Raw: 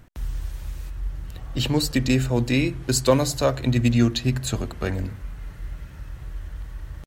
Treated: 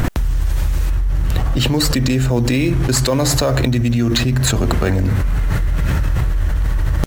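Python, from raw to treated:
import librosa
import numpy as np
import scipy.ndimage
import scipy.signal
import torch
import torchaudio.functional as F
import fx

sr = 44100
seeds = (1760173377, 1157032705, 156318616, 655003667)

p1 = fx.sample_hold(x, sr, seeds[0], rate_hz=5800.0, jitter_pct=0)
p2 = x + (p1 * librosa.db_to_amplitude(-10.0))
p3 = fx.env_flatten(p2, sr, amount_pct=100)
y = p3 * librosa.db_to_amplitude(-4.5)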